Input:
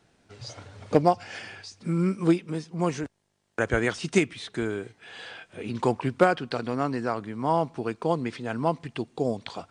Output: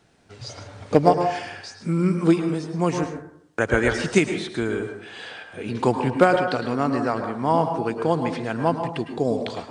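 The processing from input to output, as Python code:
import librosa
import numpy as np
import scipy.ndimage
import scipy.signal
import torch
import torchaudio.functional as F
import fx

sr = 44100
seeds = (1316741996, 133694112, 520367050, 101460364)

y = fx.rev_plate(x, sr, seeds[0], rt60_s=0.69, hf_ratio=0.35, predelay_ms=95, drr_db=5.5)
y = y * librosa.db_to_amplitude(3.5)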